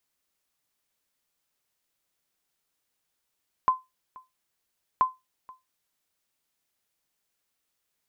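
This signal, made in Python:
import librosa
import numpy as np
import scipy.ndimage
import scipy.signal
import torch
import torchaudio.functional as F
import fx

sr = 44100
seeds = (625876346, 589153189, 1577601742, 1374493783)

y = fx.sonar_ping(sr, hz=1030.0, decay_s=0.2, every_s=1.33, pings=2, echo_s=0.48, echo_db=-24.5, level_db=-13.0)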